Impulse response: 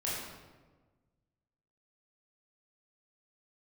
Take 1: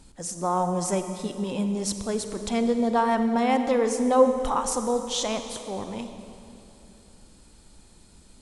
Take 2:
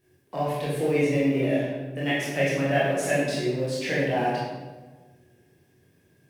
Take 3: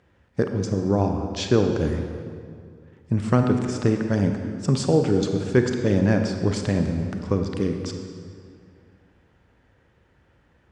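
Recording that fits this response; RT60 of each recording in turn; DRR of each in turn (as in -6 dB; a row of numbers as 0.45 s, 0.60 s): 2; 2.9 s, 1.3 s, 2.2 s; 7.5 dB, -8.0 dB, 4.5 dB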